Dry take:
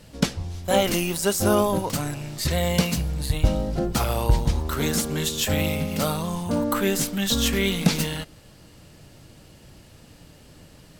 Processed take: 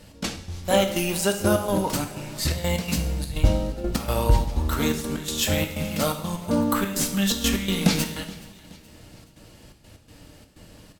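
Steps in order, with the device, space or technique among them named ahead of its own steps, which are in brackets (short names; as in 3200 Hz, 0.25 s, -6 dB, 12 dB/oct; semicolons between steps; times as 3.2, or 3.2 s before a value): trance gate with a delay (step gate "x.x.xxx.xx" 125 bpm -12 dB; feedback echo 0.424 s, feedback 50%, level -22 dB); two-slope reverb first 0.66 s, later 2.7 s, DRR 5 dB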